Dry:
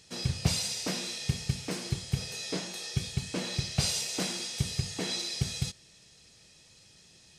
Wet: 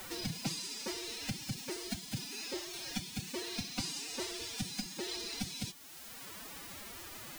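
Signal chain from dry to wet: requantised 8-bit, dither triangular; formant-preserving pitch shift +11.5 st; three-band squash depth 70%; gain -6.5 dB

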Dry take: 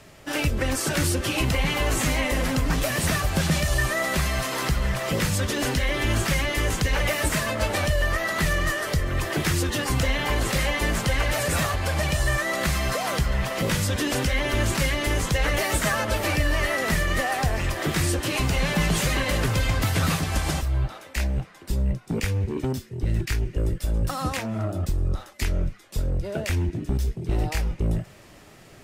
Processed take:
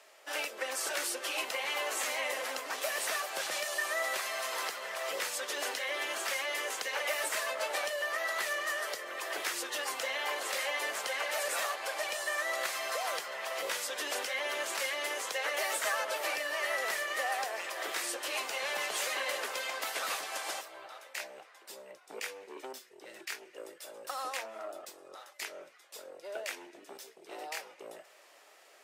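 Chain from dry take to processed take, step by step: HPF 490 Hz 24 dB/oct; gain -7 dB

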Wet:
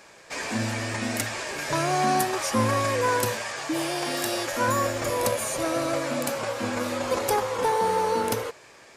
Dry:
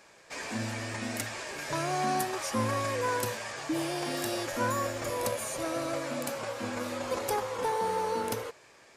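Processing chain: 3.42–4.68 low shelf 350 Hz -6.5 dB; gain +6.5 dB

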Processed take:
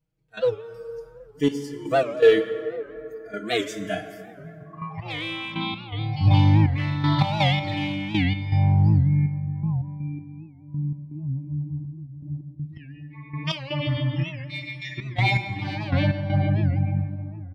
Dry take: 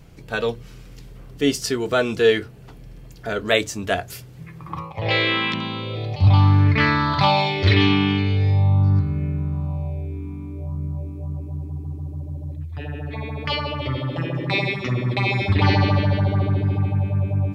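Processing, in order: ending faded out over 0.90 s; 14.23–14.98 steep high-pass 1600 Hz 96 dB/oct; harmonic-percussive split percussive -11 dB; comb 6.4 ms, depth 99%; spectral noise reduction 19 dB; in parallel at -8 dB: overloaded stage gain 15 dB; on the sum: step gate "..x.xxxx..x.x." 81 bpm -12 dB; plate-style reverb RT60 3.3 s, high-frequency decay 0.4×, DRR 8 dB; record warp 78 rpm, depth 160 cents; gain -4.5 dB

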